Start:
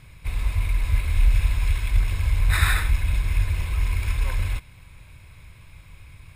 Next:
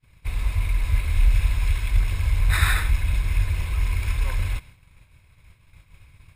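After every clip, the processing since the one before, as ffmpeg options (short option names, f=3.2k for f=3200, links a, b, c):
-af "agate=range=-33dB:threshold=-38dB:ratio=3:detection=peak"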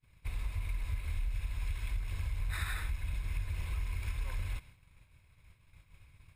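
-af "acompressor=threshold=-23dB:ratio=6,volume=-8.5dB"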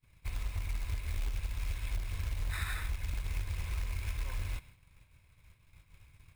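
-af "acrusher=bits=4:mode=log:mix=0:aa=0.000001"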